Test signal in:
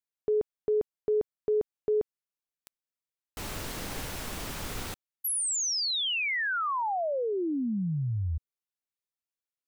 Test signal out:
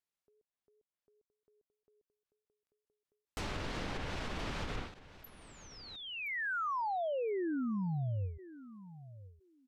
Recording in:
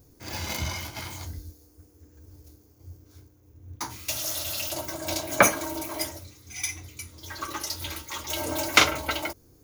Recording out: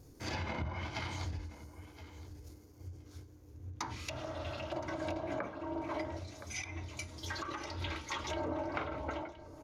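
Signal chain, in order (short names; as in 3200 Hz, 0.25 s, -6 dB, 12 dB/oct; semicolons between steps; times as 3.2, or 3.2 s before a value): treble ducked by the level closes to 1200 Hz, closed at -27 dBFS; high shelf 7700 Hz -6 dB; compressor 5:1, threshold -35 dBFS; wow and flutter 19 cents; on a send: feedback echo 1.019 s, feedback 15%, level -16.5 dB; on the sum: ending taper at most 110 dB/s; gain +1 dB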